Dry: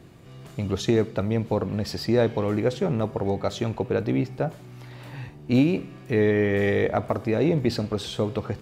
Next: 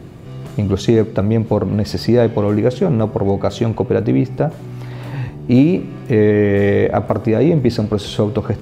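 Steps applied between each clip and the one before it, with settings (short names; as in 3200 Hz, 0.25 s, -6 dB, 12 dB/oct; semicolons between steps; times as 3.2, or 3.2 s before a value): tilt shelf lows +3.5 dB; in parallel at +2.5 dB: compressor, threshold -27 dBFS, peak gain reduction 14 dB; on the sum: gain +3 dB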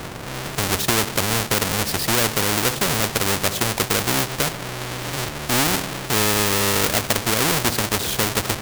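half-waves squared off; spectral compressor 2:1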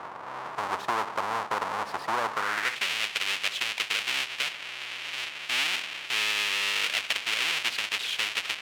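band-pass sweep 1000 Hz -> 2700 Hz, 2.29–2.86; gain +1.5 dB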